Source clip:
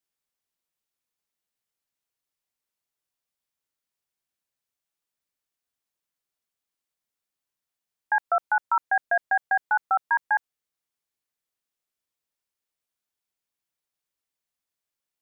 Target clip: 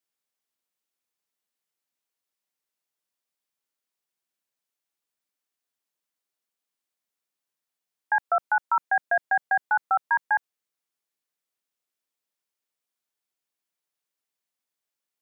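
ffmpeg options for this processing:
-af "highpass=170"

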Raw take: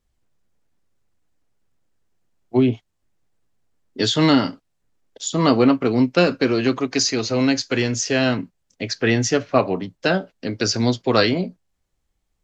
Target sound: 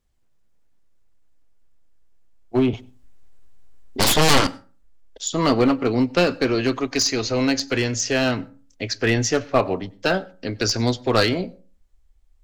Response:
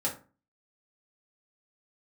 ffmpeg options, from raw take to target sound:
-filter_complex "[0:a]asubboost=boost=9:cutoff=51,aeval=exprs='clip(val(0),-1,0.188)':c=same,asettb=1/sr,asplit=3[s0][s1][s2];[s0]atrim=end=2.734[s3];[s1]atrim=start=2.73:end=4.47,asetpts=PTS-STARTPTS,afade=t=in:d=0.004:c=qsin,afade=t=out:st=1.736:d=0.004:c=qsin,aeval=exprs='0.473*(cos(1*acos(clip(val(0)/0.473,-1,1)))-cos(1*PI/2))+0.237*(cos(7*acos(clip(val(0)/0.473,-1,1)))-cos(7*PI/2))+0.0944*(cos(8*acos(clip(val(0)/0.473,-1,1)))-cos(8*PI/2))':c=same[s4];[s2]atrim=start=4.466[s5];[s3][s4]acrossfade=d=0.004:c1=hsin:c2=qsin[s6];[s6][s5]acrossfade=d=0.004:c1=qsin:c2=hsin,asplit=2[s7][s8];[1:a]atrim=start_sample=2205,adelay=93[s9];[s8][s9]afir=irnorm=-1:irlink=0,volume=0.0355[s10];[s7][s10]amix=inputs=2:normalize=0"

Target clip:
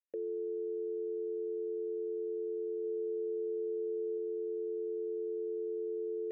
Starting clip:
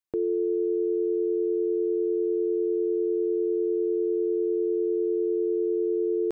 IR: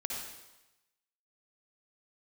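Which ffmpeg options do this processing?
-filter_complex "[0:a]asplit=3[s0][s1][s2];[s0]bandpass=f=530:t=q:w=8,volume=1[s3];[s1]bandpass=f=1840:t=q:w=8,volume=0.501[s4];[s2]bandpass=f=2480:t=q:w=8,volume=0.355[s5];[s3][s4][s5]amix=inputs=3:normalize=0,asettb=1/sr,asplit=3[s6][s7][s8];[s6]atrim=end=2.824[s9];[s7]atrim=start=2.82:end=4.18,asetpts=PTS-STARTPTS,afade=t=in:d=0.004:c=qsin,afade=t=out:st=1.356:d=0.004:c=qsin,asplit=2[s10][s11];[s11]adelay=18,volume=0.2[s12];[s10][s12]amix=inputs=2:normalize=0,atrim=end_sample=59976[s13];[s8]atrim=start=4.176[s14];[s9][s13]acrossfade=d=0.004:c1=hsin:c2=qsin[s15];[s15][s14]acrossfade=d=0.004:c1=qsin:c2=hsin"

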